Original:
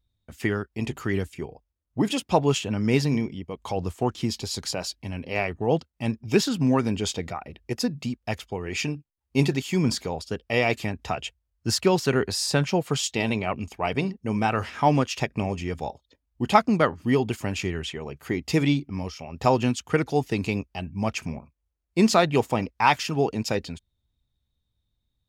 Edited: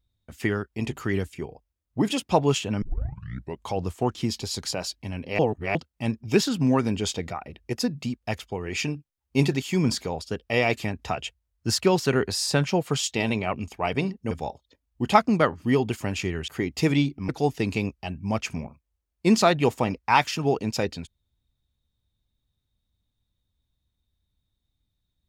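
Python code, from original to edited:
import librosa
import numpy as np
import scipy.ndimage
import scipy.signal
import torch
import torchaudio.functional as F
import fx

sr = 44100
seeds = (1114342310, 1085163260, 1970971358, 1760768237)

y = fx.edit(x, sr, fx.tape_start(start_s=2.82, length_s=0.8),
    fx.reverse_span(start_s=5.39, length_s=0.36),
    fx.cut(start_s=14.31, length_s=1.4),
    fx.cut(start_s=17.88, length_s=0.31),
    fx.cut(start_s=19.0, length_s=1.01), tone=tone)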